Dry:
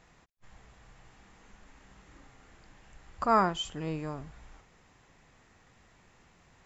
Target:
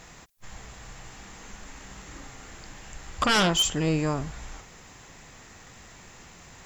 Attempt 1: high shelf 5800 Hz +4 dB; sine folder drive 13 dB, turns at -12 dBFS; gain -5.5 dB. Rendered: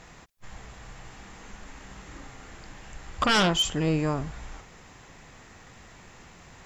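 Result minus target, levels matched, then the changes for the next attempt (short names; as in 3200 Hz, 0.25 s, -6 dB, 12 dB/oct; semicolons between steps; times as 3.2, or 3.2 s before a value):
8000 Hz band -4.0 dB
change: high shelf 5800 Hz +14 dB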